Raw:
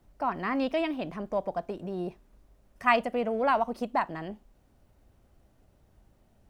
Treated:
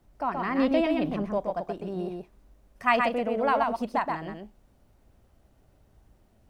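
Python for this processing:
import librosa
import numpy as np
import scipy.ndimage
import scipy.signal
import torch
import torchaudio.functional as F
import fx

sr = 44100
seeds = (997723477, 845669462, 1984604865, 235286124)

p1 = fx.low_shelf(x, sr, hz=470.0, db=7.5, at=(0.58, 1.32))
y = p1 + fx.echo_single(p1, sr, ms=126, db=-4.0, dry=0)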